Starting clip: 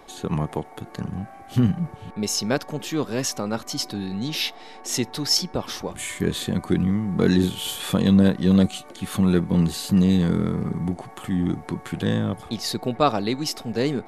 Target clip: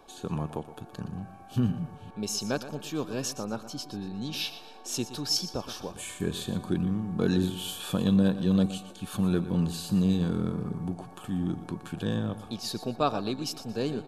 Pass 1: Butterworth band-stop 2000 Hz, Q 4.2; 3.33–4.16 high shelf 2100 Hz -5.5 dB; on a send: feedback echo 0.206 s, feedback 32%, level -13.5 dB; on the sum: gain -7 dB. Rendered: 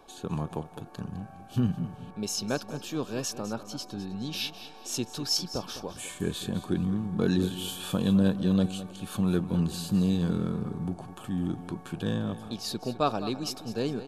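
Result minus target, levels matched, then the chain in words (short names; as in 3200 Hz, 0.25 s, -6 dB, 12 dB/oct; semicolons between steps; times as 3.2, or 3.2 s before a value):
echo 87 ms late
Butterworth band-stop 2000 Hz, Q 4.2; 3.33–4.16 high shelf 2100 Hz -5.5 dB; on a send: feedback echo 0.119 s, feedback 32%, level -13.5 dB; on the sum: gain -7 dB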